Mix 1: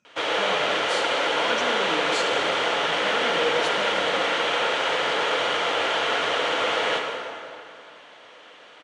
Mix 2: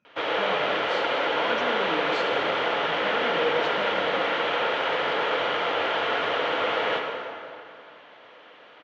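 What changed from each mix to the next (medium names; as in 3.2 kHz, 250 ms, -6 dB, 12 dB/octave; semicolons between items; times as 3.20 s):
master: add distance through air 230 m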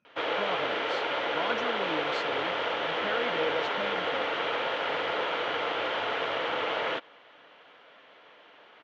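reverb: off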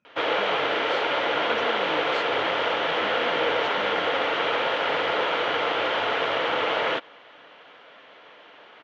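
background +5.5 dB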